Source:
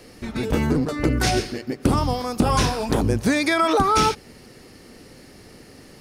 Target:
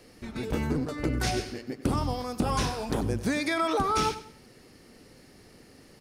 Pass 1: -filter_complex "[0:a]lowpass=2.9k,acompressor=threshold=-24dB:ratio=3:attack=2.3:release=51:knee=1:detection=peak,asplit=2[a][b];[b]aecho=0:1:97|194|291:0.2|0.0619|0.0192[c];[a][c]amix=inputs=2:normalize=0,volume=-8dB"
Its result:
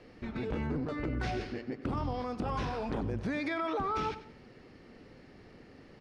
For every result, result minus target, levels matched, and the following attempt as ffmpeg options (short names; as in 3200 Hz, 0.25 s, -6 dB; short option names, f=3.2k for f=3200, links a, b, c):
compressor: peak gain reduction +10 dB; 4000 Hz band -5.5 dB
-filter_complex "[0:a]lowpass=2.9k,asplit=2[a][b];[b]aecho=0:1:97|194|291:0.2|0.0619|0.0192[c];[a][c]amix=inputs=2:normalize=0,volume=-8dB"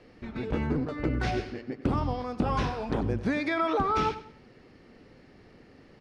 4000 Hz band -6.0 dB
-filter_complex "[0:a]asplit=2[a][b];[b]aecho=0:1:97|194|291:0.2|0.0619|0.0192[c];[a][c]amix=inputs=2:normalize=0,volume=-8dB"